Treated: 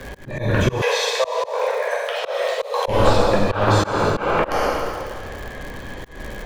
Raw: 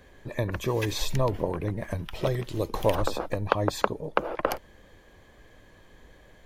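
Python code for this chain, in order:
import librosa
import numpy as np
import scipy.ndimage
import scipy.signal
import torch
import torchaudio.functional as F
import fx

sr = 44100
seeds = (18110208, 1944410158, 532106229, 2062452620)

y = fx.air_absorb(x, sr, metres=54.0)
y = fx.rev_plate(y, sr, seeds[0], rt60_s=1.5, hf_ratio=0.95, predelay_ms=0, drr_db=-6.0)
y = fx.dmg_crackle(y, sr, seeds[1], per_s=140.0, level_db=-40.0)
y = fx.steep_highpass(y, sr, hz=460.0, slope=96, at=(0.81, 2.88))
y = fx.auto_swell(y, sr, attack_ms=215.0)
y = fx.band_squash(y, sr, depth_pct=40)
y = y * 10.0 ** (8.0 / 20.0)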